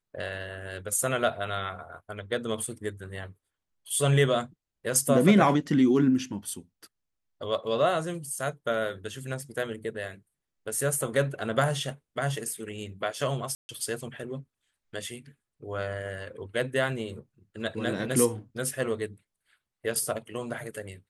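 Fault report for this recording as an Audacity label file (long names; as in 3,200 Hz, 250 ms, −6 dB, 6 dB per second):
13.550000	13.690000	drop-out 140 ms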